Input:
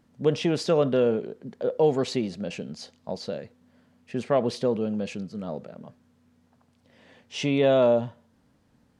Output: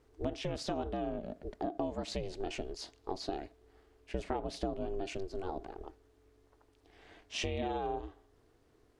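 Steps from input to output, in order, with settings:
downward compressor 16 to 1, threshold −29 dBFS, peak gain reduction 14 dB
ring modulation 190 Hz

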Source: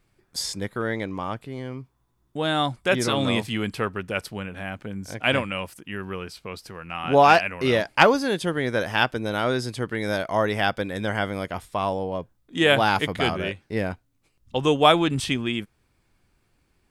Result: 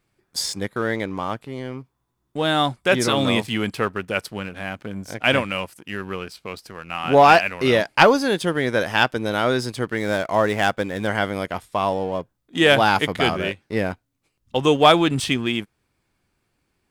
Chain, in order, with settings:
0:09.97–0:11.07: running median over 9 samples
low-shelf EQ 63 Hz −10 dB
leveller curve on the samples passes 1

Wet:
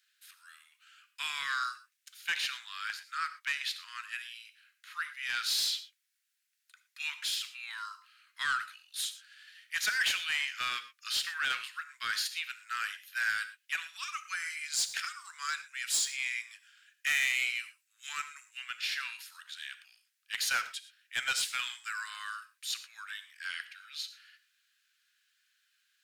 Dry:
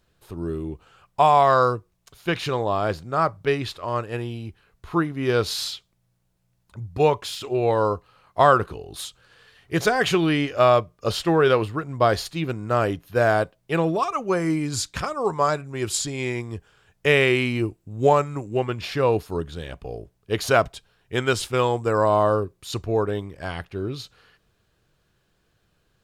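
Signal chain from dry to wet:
Butterworth high-pass 1,500 Hz 48 dB per octave
soft clipping −23.5 dBFS, distortion −9 dB
reverb whose tail is shaped and stops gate 140 ms flat, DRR 10.5 dB

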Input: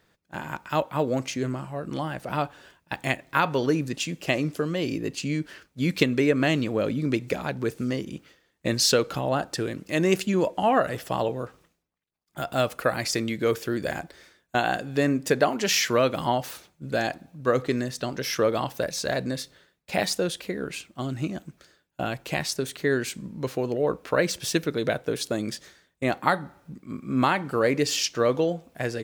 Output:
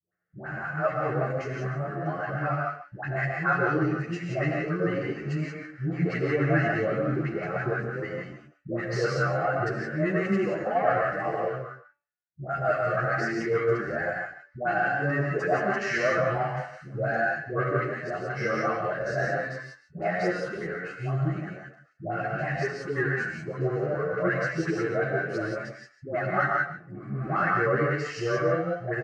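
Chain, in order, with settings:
leveller curve on the samples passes 3
high-pass filter 200 Hz 12 dB per octave
parametric band 500 Hz −14.5 dB 0.74 octaves
notch filter 2,400 Hz, Q 7
pitch vibrato 3.7 Hz 8.6 cents
head-to-tape spacing loss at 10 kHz 44 dB
phaser with its sweep stopped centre 940 Hz, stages 6
hum removal 289.1 Hz, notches 39
all-pass dispersion highs, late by 130 ms, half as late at 630 Hz
on a send: single-tap delay 143 ms −13 dB
on the sum: reverb whose tail is shaped and stops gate 200 ms rising, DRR 0 dB
barber-pole flanger 9.6 ms +1.5 Hz
level +3 dB

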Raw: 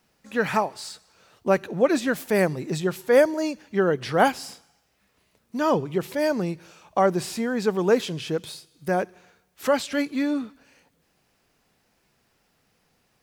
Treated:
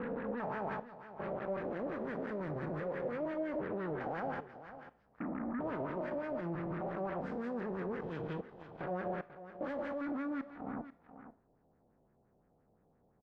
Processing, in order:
spectrum averaged block by block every 400 ms
low-pass that shuts in the quiet parts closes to 510 Hz, open at −26 dBFS
parametric band 1,400 Hz −5.5 dB 2.4 octaves
downward compressor 6 to 1, threshold −44 dBFS, peak gain reduction 17.5 dB
brickwall limiter −42 dBFS, peak gain reduction 9.5 dB
harmonic generator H 7 −14 dB, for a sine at −42 dBFS
auto-filter low-pass sine 5.8 Hz 670–1,800 Hz
on a send: single-tap delay 491 ms −14 dB
on the sum: four-comb reverb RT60 0.4 s, combs from 26 ms, DRR 16 dB
one half of a high-frequency compander encoder only
level +8.5 dB

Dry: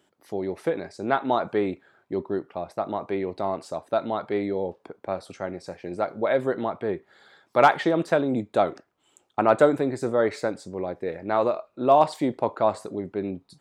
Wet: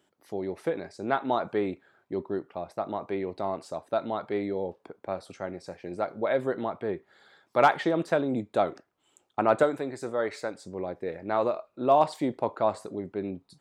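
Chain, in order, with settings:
0:09.63–0:10.63: low-shelf EQ 450 Hz −7.5 dB
level −3.5 dB

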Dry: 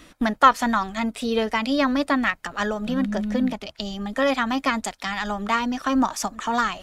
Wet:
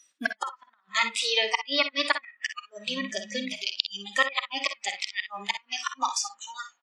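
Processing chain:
fade-out on the ending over 1.11 s
meter weighting curve ITU-R 468
treble cut that deepens with the level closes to 2,700 Hz, closed at −16.5 dBFS
dynamic equaliser 1,600 Hz, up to +4 dB, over −32 dBFS, Q 0.89
spring reverb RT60 2.9 s, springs 36 ms, chirp 45 ms, DRR 14 dB
gate with flip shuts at −7 dBFS, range −25 dB
noise reduction from a noise print of the clip's start 26 dB
on a send: ambience of single reflections 50 ms −12 dB, 61 ms −12 dB
on the sum: level −1 dB

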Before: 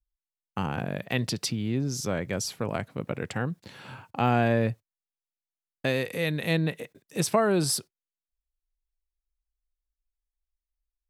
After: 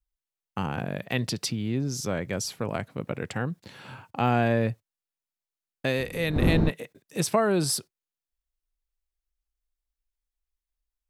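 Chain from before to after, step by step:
0:05.98–0:06.69: wind on the microphone 220 Hz −27 dBFS

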